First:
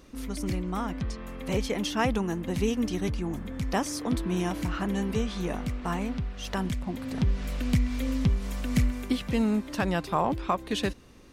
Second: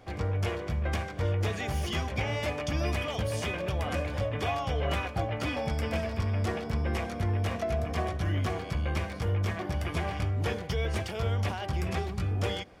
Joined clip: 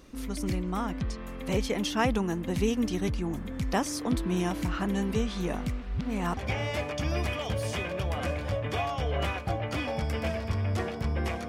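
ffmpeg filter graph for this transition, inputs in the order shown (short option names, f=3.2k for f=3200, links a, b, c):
-filter_complex "[0:a]apad=whole_dur=11.48,atrim=end=11.48,asplit=2[a][b];[a]atrim=end=5.822[c];[b]atrim=start=5.818:end=6.372,asetpts=PTS-STARTPTS,areverse[d];[1:a]atrim=start=2.058:end=7.17[e];[c][d]acrossfade=d=0.004:c1=hsin:c2=hsin[f];[f][e]acrossfade=d=0.004:c1=hsin:c2=hsin"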